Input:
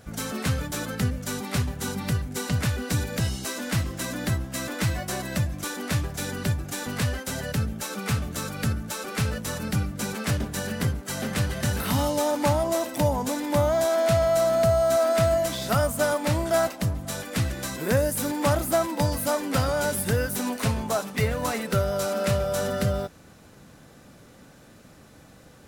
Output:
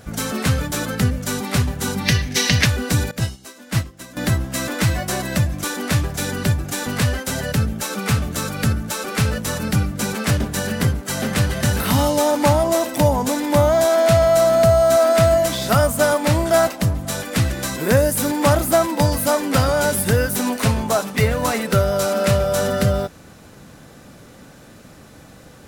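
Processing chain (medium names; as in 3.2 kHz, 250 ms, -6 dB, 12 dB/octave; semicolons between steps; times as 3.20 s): 2.06–2.65 s: time-frequency box 1.6–6.6 kHz +11 dB; 3.11–4.17 s: upward expansion 2.5:1, over -34 dBFS; trim +7 dB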